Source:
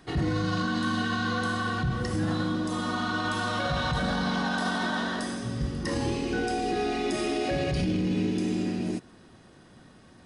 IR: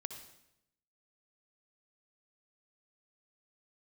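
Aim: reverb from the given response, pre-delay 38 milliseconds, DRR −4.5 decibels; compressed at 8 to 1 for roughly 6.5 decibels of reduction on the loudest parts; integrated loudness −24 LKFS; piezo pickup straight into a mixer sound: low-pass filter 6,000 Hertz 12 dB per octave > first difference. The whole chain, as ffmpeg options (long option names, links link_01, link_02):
-filter_complex "[0:a]acompressor=threshold=-30dB:ratio=8,asplit=2[link_01][link_02];[1:a]atrim=start_sample=2205,adelay=38[link_03];[link_02][link_03]afir=irnorm=-1:irlink=0,volume=6.5dB[link_04];[link_01][link_04]amix=inputs=2:normalize=0,lowpass=6000,aderivative,volume=19dB"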